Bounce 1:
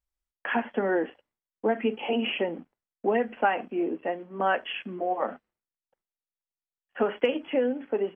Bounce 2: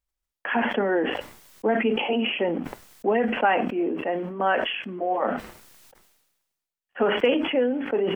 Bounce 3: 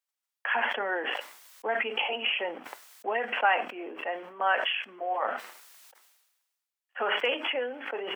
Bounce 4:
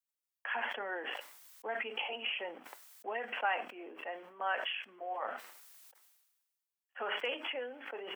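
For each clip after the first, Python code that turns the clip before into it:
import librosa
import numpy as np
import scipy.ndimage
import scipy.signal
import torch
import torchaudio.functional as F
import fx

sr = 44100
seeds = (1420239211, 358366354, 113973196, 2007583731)

y1 = fx.sustainer(x, sr, db_per_s=46.0)
y1 = F.gain(torch.from_numpy(y1), 2.0).numpy()
y2 = scipy.signal.sosfilt(scipy.signal.butter(2, 820.0, 'highpass', fs=sr, output='sos'), y1)
y3 = fx.high_shelf(y2, sr, hz=7600.0, db=7.5)
y3 = F.gain(torch.from_numpy(y3), -9.0).numpy()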